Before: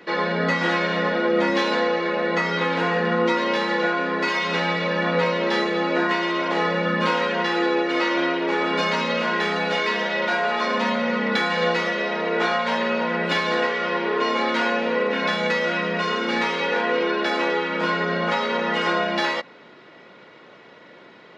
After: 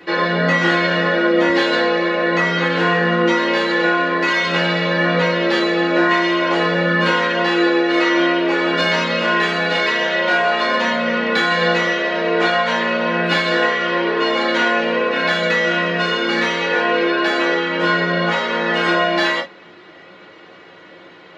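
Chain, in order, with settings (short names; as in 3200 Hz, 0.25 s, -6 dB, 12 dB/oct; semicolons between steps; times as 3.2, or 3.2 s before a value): non-linear reverb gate 80 ms falling, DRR -1 dB; gain +1.5 dB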